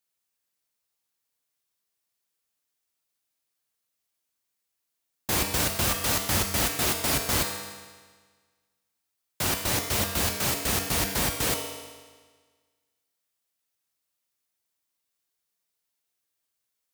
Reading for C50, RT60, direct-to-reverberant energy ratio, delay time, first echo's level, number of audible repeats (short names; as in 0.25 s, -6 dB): 5.0 dB, 1.5 s, 2.5 dB, none, none, none